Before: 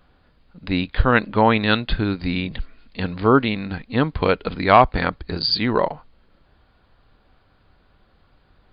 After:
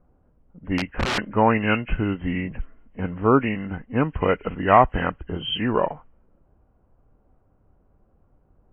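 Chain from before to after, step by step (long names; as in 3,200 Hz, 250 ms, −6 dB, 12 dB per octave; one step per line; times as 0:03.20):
hearing-aid frequency compression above 1,400 Hz 1.5 to 1
0:00.78–0:01.18: wrap-around overflow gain 15 dB
low-pass that shuts in the quiet parts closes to 690 Hz, open at −12.5 dBFS
level −2 dB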